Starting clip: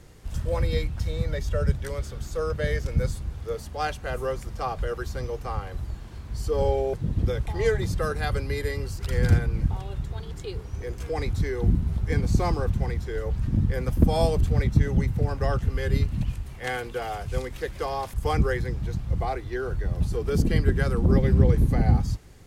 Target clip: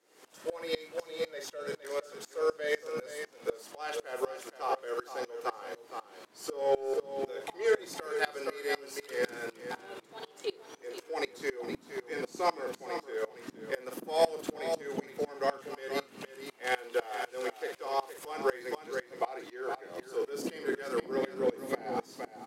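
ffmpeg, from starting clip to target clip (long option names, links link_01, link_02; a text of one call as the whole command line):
ffmpeg -i in.wav -filter_complex "[0:a]highpass=frequency=330:width=0.5412,highpass=frequency=330:width=1.3066,asplit=2[link_01][link_02];[link_02]adelay=47,volume=-9dB[link_03];[link_01][link_03]amix=inputs=2:normalize=0,aecho=1:1:465:0.376,asplit=2[link_04][link_05];[link_05]asoftclip=type=tanh:threshold=-26dB,volume=-3.5dB[link_06];[link_04][link_06]amix=inputs=2:normalize=0,aeval=exprs='val(0)*pow(10,-23*if(lt(mod(-4*n/s,1),2*abs(-4)/1000),1-mod(-4*n/s,1)/(2*abs(-4)/1000),(mod(-4*n/s,1)-2*abs(-4)/1000)/(1-2*abs(-4)/1000))/20)':channel_layout=same" out.wav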